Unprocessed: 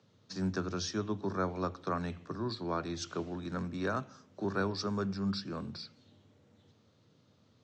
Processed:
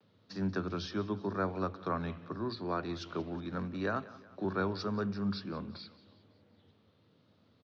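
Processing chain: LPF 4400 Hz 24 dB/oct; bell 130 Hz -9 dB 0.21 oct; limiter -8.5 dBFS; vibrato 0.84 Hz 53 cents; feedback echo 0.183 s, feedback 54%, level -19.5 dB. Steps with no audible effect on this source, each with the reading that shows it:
limiter -8.5 dBFS: input peak -20.5 dBFS

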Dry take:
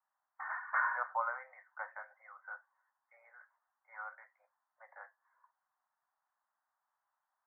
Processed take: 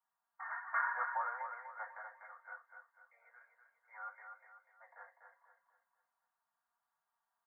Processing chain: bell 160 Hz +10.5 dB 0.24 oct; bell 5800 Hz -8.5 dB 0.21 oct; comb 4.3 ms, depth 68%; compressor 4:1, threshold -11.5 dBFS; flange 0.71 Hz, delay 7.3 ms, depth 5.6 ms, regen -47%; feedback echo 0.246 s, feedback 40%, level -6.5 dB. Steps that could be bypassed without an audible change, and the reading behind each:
bell 160 Hz: input band starts at 450 Hz; bell 5800 Hz: input band ends at 2300 Hz; compressor, threshold -11.5 dBFS: input peak -19.5 dBFS

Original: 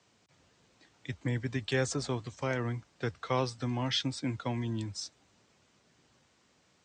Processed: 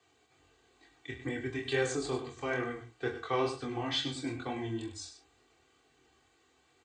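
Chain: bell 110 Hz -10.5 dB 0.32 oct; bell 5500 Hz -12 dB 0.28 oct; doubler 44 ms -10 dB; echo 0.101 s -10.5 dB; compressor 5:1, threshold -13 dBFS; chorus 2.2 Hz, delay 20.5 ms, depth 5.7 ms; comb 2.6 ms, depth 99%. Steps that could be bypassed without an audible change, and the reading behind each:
compressor, threshold -13 dBFS: input peak -17.5 dBFS

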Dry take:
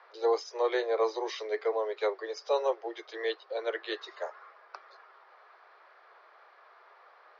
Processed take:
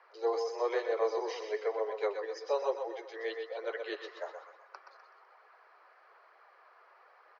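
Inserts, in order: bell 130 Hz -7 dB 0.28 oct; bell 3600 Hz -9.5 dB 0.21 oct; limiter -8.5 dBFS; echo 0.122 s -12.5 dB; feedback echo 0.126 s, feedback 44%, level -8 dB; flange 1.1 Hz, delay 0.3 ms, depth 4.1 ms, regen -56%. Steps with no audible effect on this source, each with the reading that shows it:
bell 130 Hz: input band starts at 300 Hz; limiter -8.5 dBFS: input peak -15.5 dBFS

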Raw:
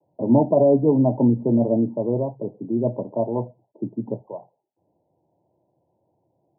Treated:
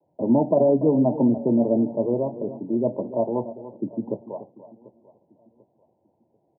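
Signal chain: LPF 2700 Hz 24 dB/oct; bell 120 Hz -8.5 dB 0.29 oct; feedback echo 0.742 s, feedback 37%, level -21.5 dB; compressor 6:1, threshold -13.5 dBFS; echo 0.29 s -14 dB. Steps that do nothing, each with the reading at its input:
LPF 2700 Hz: input band ends at 1000 Hz

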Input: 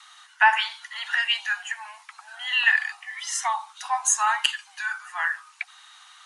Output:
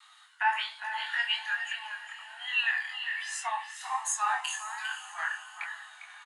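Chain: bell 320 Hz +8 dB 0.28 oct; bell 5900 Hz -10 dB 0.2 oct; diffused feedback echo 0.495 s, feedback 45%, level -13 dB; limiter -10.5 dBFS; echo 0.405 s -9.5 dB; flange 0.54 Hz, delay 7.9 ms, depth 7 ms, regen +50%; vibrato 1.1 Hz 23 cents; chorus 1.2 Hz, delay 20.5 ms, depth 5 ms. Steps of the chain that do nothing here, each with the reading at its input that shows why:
bell 320 Hz: input band starts at 640 Hz

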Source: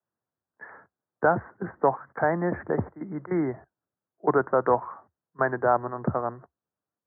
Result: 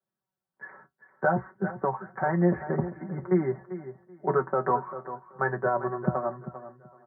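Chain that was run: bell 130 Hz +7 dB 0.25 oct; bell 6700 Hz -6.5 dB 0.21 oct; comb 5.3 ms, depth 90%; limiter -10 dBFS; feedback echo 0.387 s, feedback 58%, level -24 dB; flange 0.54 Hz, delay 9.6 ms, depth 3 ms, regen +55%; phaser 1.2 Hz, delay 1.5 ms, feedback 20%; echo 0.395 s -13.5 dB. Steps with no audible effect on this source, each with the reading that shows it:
bell 6700 Hz: input band ends at 2000 Hz

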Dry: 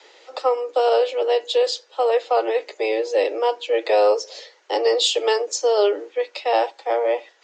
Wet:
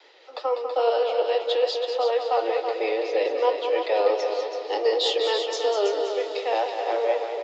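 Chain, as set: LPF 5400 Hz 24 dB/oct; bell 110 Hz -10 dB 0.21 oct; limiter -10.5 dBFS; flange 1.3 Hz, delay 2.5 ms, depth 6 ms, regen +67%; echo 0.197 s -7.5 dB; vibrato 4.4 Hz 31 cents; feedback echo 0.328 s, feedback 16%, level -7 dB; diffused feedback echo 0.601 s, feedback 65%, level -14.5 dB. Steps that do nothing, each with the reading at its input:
bell 110 Hz: input band starts at 290 Hz

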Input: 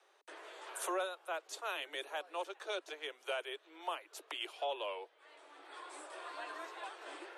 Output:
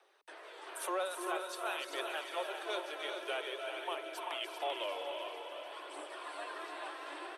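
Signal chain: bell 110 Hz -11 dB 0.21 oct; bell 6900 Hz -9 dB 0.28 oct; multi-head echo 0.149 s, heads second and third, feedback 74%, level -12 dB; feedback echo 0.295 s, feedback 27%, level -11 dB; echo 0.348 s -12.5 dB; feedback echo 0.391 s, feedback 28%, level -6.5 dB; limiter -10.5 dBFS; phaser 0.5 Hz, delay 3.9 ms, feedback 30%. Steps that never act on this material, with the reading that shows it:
bell 110 Hz: input band starts at 270 Hz; limiter -10.5 dBFS: input peak -24.5 dBFS

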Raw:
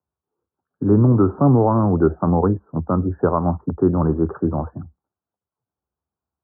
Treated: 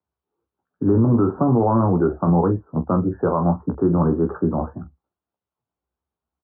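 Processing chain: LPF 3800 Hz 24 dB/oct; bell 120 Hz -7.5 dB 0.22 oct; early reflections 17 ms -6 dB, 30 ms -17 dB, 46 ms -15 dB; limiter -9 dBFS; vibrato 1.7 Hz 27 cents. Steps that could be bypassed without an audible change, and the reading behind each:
LPF 3800 Hz: input band ends at 1400 Hz

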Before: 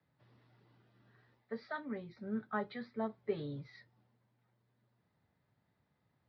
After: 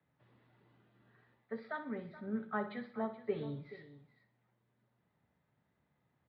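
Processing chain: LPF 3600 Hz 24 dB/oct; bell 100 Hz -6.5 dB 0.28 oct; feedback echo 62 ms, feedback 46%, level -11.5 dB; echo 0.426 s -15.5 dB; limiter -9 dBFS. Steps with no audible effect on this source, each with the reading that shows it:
limiter -9 dBFS: input peak -22.5 dBFS

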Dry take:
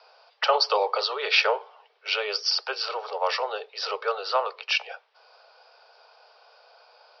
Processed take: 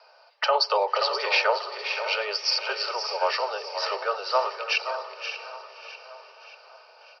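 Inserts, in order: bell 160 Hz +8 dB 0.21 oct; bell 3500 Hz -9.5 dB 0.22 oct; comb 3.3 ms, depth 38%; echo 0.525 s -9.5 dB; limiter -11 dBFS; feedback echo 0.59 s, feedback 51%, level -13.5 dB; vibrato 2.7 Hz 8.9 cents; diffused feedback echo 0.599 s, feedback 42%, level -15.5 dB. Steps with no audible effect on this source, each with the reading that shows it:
bell 160 Hz: input band starts at 360 Hz

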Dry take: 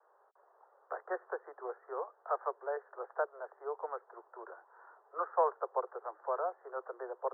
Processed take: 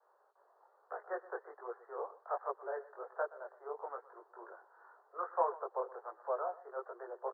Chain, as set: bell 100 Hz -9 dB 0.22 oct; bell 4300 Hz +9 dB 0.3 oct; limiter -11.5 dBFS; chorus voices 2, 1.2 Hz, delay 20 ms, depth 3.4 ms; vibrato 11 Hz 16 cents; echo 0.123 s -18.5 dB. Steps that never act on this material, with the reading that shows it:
bell 100 Hz: input band starts at 320 Hz; bell 4300 Hz: input band ends at 1800 Hz; limiter -11.5 dBFS: input peak -18.5 dBFS

